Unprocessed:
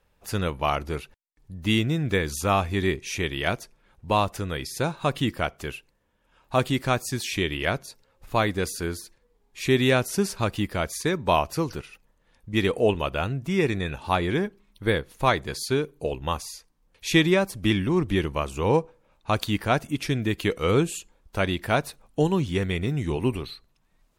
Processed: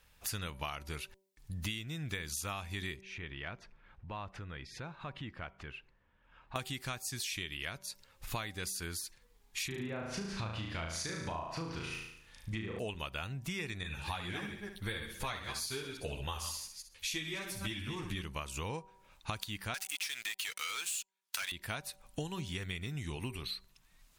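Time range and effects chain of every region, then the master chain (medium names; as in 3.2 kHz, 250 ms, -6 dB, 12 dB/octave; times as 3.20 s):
3.01–6.56 s: low-pass 1.9 kHz + compression 2:1, threshold -51 dBFS
9.67–12.79 s: low-pass that closes with the level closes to 990 Hz, closed at -18.5 dBFS + compression 2:1, threshold -26 dBFS + flutter echo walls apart 6.2 m, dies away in 0.69 s
13.83–18.22 s: chunks repeated in reverse 142 ms, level -10.5 dB + flutter echo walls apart 10.8 m, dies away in 0.41 s + three-phase chorus
19.74–21.52 s: high-pass 1.5 kHz + waveshaping leveller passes 5 + compression 2:1, threshold -25 dBFS
whole clip: amplifier tone stack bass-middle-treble 5-5-5; de-hum 192.1 Hz, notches 5; compression 16:1, threshold -50 dBFS; trim +14.5 dB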